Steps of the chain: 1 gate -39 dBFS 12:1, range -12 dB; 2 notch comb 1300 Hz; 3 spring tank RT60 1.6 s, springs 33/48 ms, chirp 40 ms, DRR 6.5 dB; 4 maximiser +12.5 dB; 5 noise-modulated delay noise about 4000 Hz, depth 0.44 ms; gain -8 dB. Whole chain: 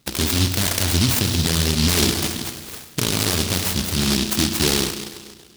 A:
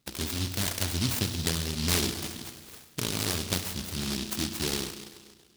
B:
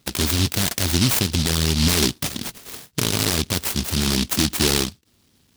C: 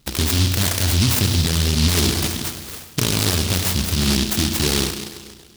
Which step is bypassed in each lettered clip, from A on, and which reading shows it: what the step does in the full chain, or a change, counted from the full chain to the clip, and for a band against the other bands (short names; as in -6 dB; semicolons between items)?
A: 4, crest factor change +7.5 dB; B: 3, momentary loudness spread change -3 LU; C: 2, 125 Hz band +3.0 dB